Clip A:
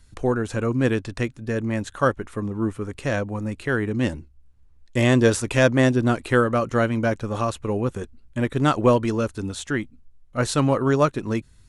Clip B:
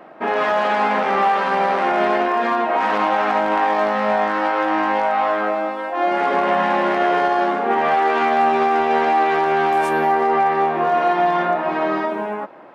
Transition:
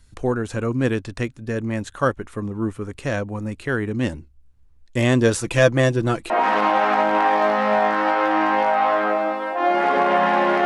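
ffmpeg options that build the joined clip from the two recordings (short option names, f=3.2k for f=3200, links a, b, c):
-filter_complex "[0:a]asettb=1/sr,asplit=3[a][b][c];[a]atrim=end=5.354[d];[b]atrim=start=5.35:end=6.3,asetpts=PTS-STARTPTS,afade=t=in:d=0.004:c=qsin,afade=t=out:st=0.946:d=0.004:c=qsin,aecho=1:1:6:0.53,atrim=end_sample=41895[e];[c]atrim=start=6.296[f];[d][e]acrossfade=d=0.004:c1=hsin:c2=qsin[g];[g][f]acrossfade=d=0.004:c1=qsin:c2=hsin,apad=whole_dur=10.65,atrim=end=10.65,atrim=end=6.302[h];[1:a]atrim=start=2.668:end=7.02[i];[h][i]acrossfade=d=0.004:c1=hsin:c2=hsin"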